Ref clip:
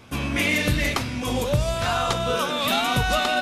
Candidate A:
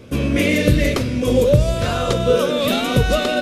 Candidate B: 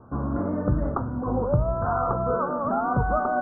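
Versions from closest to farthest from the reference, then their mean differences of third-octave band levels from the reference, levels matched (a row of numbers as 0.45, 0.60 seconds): A, B; 4.5, 15.0 decibels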